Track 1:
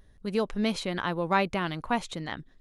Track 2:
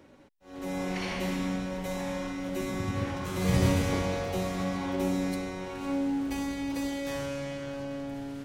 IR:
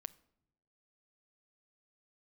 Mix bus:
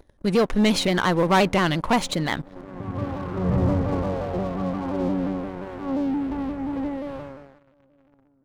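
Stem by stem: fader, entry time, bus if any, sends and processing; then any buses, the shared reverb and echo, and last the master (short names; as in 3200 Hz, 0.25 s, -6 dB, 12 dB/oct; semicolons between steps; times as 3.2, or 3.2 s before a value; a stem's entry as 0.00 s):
0.0 dB, 0.00 s, no send, dry
6.96 s -7 dB -> 7.68 s -19.5 dB, 0.00 s, send -22.5 dB, LPF 1300 Hz 24 dB/oct; auto duck -14 dB, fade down 1.05 s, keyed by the first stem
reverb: on, pre-delay 7 ms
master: sample leveller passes 3; shaped vibrato saw down 5.7 Hz, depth 100 cents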